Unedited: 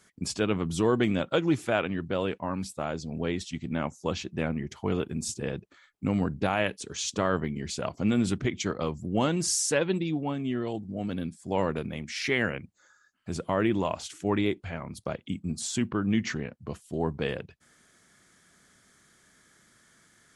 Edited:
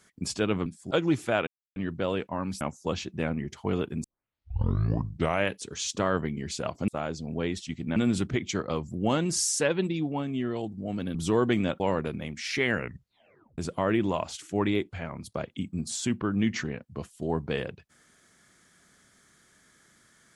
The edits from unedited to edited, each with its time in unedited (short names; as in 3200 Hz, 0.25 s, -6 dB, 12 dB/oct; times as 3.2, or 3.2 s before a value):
0.66–1.31 swap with 11.26–11.51
1.87 insert silence 0.29 s
2.72–3.8 move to 8.07
5.23 tape start 1.45 s
12.48 tape stop 0.81 s